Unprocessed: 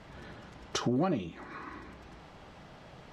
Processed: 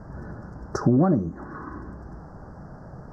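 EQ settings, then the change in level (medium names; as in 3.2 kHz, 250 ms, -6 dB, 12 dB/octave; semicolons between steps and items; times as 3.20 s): elliptic band-stop 1.6–5.1 kHz, stop band 50 dB; tone controls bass +6 dB, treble -2 dB; treble shelf 2.9 kHz -10.5 dB; +7.5 dB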